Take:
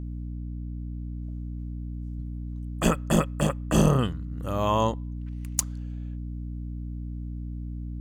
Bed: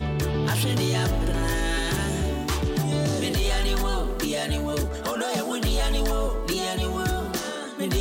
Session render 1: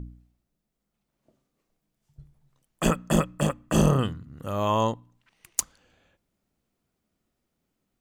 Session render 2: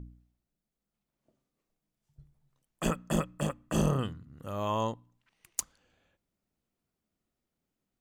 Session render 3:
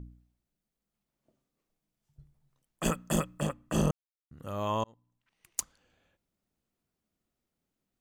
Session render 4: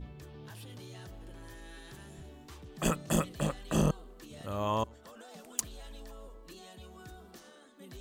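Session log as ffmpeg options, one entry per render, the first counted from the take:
ffmpeg -i in.wav -af "bandreject=frequency=60:width_type=h:width=4,bandreject=frequency=120:width_type=h:width=4,bandreject=frequency=180:width_type=h:width=4,bandreject=frequency=240:width_type=h:width=4,bandreject=frequency=300:width_type=h:width=4" out.wav
ffmpeg -i in.wav -af "volume=-7dB" out.wav
ffmpeg -i in.wav -filter_complex "[0:a]asettb=1/sr,asplit=3[link_01][link_02][link_03];[link_01]atrim=end=2.854[link_04];[link_02]atrim=start=2.85:end=3.39,asetpts=PTS-STARTPTS,afade=type=in:duration=0.004:curve=qsin,afade=type=out:start_time=0.536:duration=0.004:curve=qsin,highshelf=frequency=4700:gain=7.5[link_05];[link_03]atrim=start=3.386[link_06];[link_04][link_05]acrossfade=duration=0.004:curve1=hsin:curve2=qsin[link_07];[link_07][link_06]acrossfade=duration=0.004:curve1=qsin:curve2=hsin,asplit=4[link_08][link_09][link_10][link_11];[link_08]atrim=end=3.91,asetpts=PTS-STARTPTS,afade=type=out:start_time=3.906:duration=0.004:curve=hsin[link_12];[link_09]atrim=start=3.91:end=4.31,asetpts=PTS-STARTPTS,volume=0[link_13];[link_10]atrim=start=4.31:end=4.84,asetpts=PTS-STARTPTS,afade=type=in:duration=0.004:curve=hsin,afade=type=out:start_time=0.526:duration=0.004:curve=hsin[link_14];[link_11]atrim=start=4.84,asetpts=PTS-STARTPTS,afade=type=in:duration=0.76[link_15];[link_12][link_13][link_14][link_15]concat=n=4:v=0:a=1" out.wav
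ffmpeg -i in.wav -i bed.wav -filter_complex "[1:a]volume=-24dB[link_01];[0:a][link_01]amix=inputs=2:normalize=0" out.wav

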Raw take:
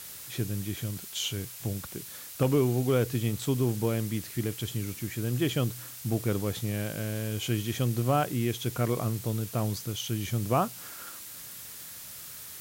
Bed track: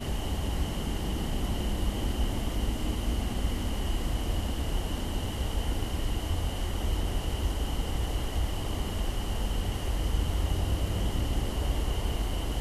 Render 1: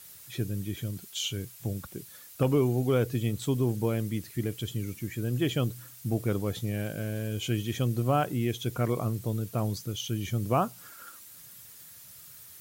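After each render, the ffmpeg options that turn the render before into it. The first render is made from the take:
ffmpeg -i in.wav -af "afftdn=noise_reduction=9:noise_floor=-44" out.wav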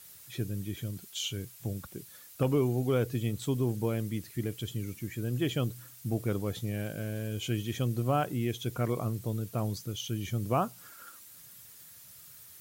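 ffmpeg -i in.wav -af "volume=-2.5dB" out.wav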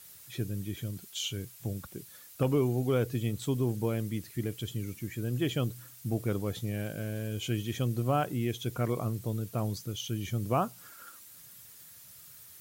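ffmpeg -i in.wav -af anull out.wav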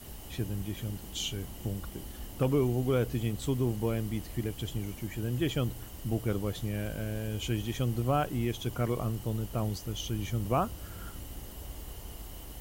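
ffmpeg -i in.wav -i bed.wav -filter_complex "[1:a]volume=-14.5dB[link_01];[0:a][link_01]amix=inputs=2:normalize=0" out.wav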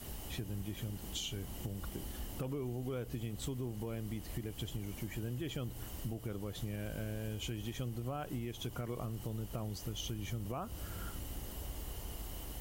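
ffmpeg -i in.wav -af "alimiter=level_in=0.5dB:limit=-24dB:level=0:latency=1:release=172,volume=-0.5dB,acompressor=threshold=-37dB:ratio=4" out.wav

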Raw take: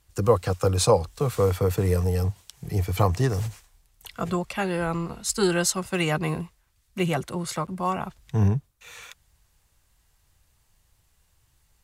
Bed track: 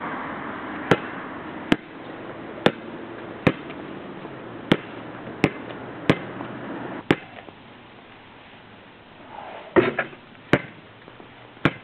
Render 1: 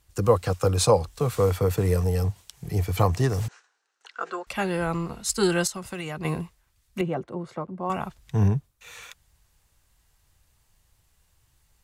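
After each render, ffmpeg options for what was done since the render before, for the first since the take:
ffmpeg -i in.wav -filter_complex "[0:a]asettb=1/sr,asplit=3[link_01][link_02][link_03];[link_01]atrim=end=3.484[link_04];[link_02]atrim=start=3.48:end=4.47,asetpts=PTS-STARTPTS,afade=type=in:duration=0.004:curve=qsin,afade=type=out:start_time=0.986:duration=0.004:curve=qsin,highpass=frequency=410:width=0.5412,highpass=frequency=410:width=1.3066,equalizer=frequency=620:width_type=q:width=4:gain=-9,equalizer=frequency=990:width_type=q:width=4:gain=-3,equalizer=frequency=1500:width_type=q:width=4:gain=9,equalizer=frequency=2200:width_type=q:width=4:gain=-6,equalizer=frequency=3400:width_type=q:width=4:gain=-8,equalizer=frequency=4900:width_type=q:width=4:gain=-6,lowpass=frequency=5900:width=0.5412,lowpass=frequency=5900:width=1.3066[link_05];[link_03]atrim=start=4.466[link_06];[link_04][link_05]acrossfade=duration=0.004:curve1=hsin:curve2=qsin[link_07];[link_07][link_06]acrossfade=duration=0.004:curve1=qsin:curve2=hsin,asettb=1/sr,asplit=3[link_08][link_09][link_10];[link_08]atrim=end=5.674[link_11];[link_09]atrim=start=5.67:end=6.25,asetpts=PTS-STARTPTS,afade=type=in:duration=0.004:curve=qsin,afade=type=out:start_time=0.576:duration=0.004:curve=qsin,acompressor=threshold=-30dB:ratio=5:attack=3.2:release=140:knee=1:detection=peak[link_12];[link_10]atrim=start=6.246[link_13];[link_11][link_12]acrossfade=duration=0.004:curve1=hsin:curve2=qsin[link_14];[link_14][link_13]acrossfade=duration=0.004:curve1=qsin:curve2=hsin,asettb=1/sr,asplit=3[link_15][link_16][link_17];[link_15]atrim=end=7.014[link_18];[link_16]atrim=start=7.01:end=7.9,asetpts=PTS-STARTPTS,afade=type=in:duration=0.004:curve=qsin,afade=type=out:start_time=0.886:duration=0.004:curve=qsin,bandpass=frequency=390:width_type=q:width=0.72[link_19];[link_17]atrim=start=7.896[link_20];[link_18][link_19]acrossfade=duration=0.004:curve1=hsin:curve2=qsin[link_21];[link_21][link_20]acrossfade=duration=0.004:curve1=qsin:curve2=hsin" out.wav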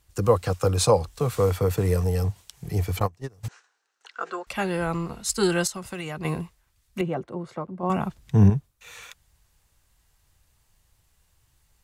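ffmpeg -i in.wav -filter_complex "[0:a]asplit=3[link_01][link_02][link_03];[link_01]afade=type=out:start_time=2.98:duration=0.02[link_04];[link_02]agate=range=-28dB:threshold=-19dB:ratio=16:release=100:detection=peak,afade=type=in:start_time=2.98:duration=0.02,afade=type=out:start_time=3.43:duration=0.02[link_05];[link_03]afade=type=in:start_time=3.43:duration=0.02[link_06];[link_04][link_05][link_06]amix=inputs=3:normalize=0,asettb=1/sr,asplit=3[link_07][link_08][link_09];[link_07]atrim=end=7.834[link_10];[link_08]atrim=start=7.83:end=8.5,asetpts=PTS-STARTPTS,afade=type=in:duration=0.004:curve=qsin,afade=type=out:start_time=0.666:duration=0.004:curve=qsin,equalizer=frequency=200:width_type=o:width=2.2:gain=7.5[link_11];[link_09]atrim=start=8.496[link_12];[link_10][link_11]acrossfade=duration=0.004:curve1=hsin:curve2=qsin[link_13];[link_13][link_12]acrossfade=duration=0.004:curve1=qsin:curve2=hsin" out.wav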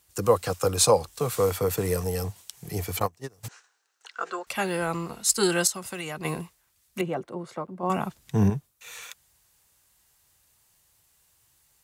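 ffmpeg -i in.wav -af "highpass=frequency=220:poles=1,highshelf=frequency=6300:gain=8.5" out.wav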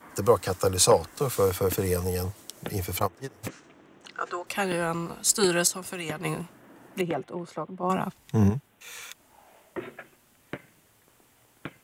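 ffmpeg -i in.wav -i bed.wav -filter_complex "[1:a]volume=-19dB[link_01];[0:a][link_01]amix=inputs=2:normalize=0" out.wav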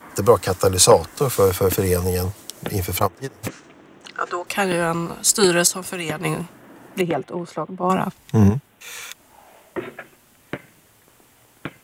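ffmpeg -i in.wav -af "volume=7dB,alimiter=limit=-1dB:level=0:latency=1" out.wav

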